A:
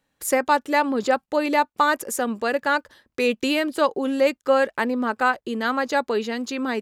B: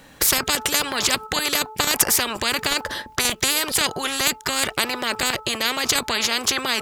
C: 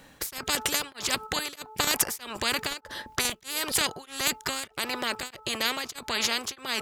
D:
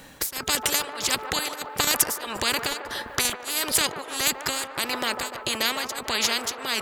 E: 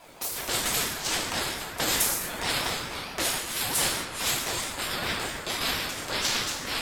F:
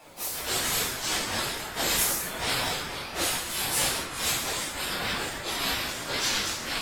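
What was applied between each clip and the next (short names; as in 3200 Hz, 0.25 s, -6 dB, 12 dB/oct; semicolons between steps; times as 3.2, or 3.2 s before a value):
de-hum 434.5 Hz, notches 3; in parallel at +1 dB: level quantiser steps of 19 dB; on the sum: spectral compressor 10:1
beating tremolo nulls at 1.6 Hz; gain -4.5 dB
high shelf 5800 Hz +4 dB; in parallel at -1 dB: compressor, threshold -35 dBFS, peak gain reduction 18 dB; on the sum: band-limited delay 0.148 s, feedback 69%, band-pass 750 Hz, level -6 dB
bell 85 Hz +11.5 dB 1.2 oct; non-linear reverb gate 0.29 s falling, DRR -5.5 dB; ring modulator with a swept carrier 630 Hz, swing 35%, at 4.5 Hz; gain -6.5 dB
phase scrambler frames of 0.1 s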